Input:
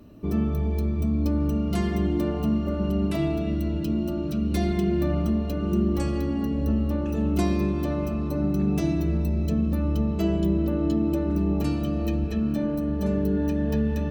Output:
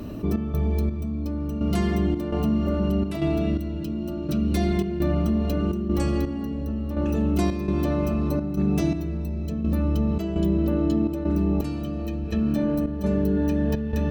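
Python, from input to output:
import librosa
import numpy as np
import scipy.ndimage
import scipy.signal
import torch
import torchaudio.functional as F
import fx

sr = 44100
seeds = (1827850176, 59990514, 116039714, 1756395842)

y = fx.step_gate(x, sr, bpm=84, pattern='xx.xx....xxx.xx', floor_db=-12.0, edge_ms=4.5)
y = fx.env_flatten(y, sr, amount_pct=50)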